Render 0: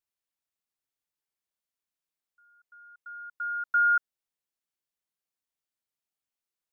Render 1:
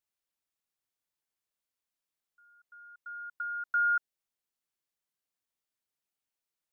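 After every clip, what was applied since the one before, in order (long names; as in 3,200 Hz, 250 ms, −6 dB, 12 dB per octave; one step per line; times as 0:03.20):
dynamic equaliser 1,300 Hz, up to −5 dB, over −36 dBFS, Q 1.9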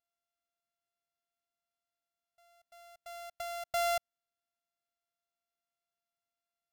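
samples sorted by size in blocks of 64 samples
level −4 dB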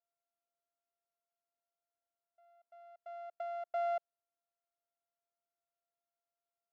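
in parallel at +2 dB: brickwall limiter −33 dBFS, peak gain reduction 7 dB
on the sum: four-pole ladder band-pass 660 Hz, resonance 25%
level +3.5 dB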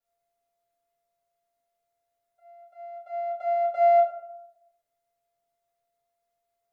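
convolution reverb RT60 0.90 s, pre-delay 4 ms, DRR −9 dB
level −2.5 dB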